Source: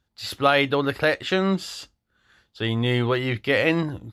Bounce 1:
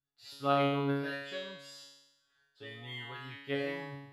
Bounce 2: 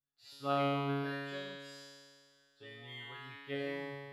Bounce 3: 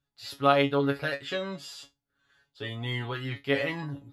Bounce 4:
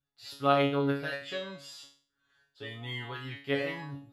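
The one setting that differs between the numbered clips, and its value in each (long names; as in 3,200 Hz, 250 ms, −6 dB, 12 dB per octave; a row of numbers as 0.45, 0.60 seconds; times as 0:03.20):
tuned comb filter, decay: 0.97, 2, 0.17, 0.43 seconds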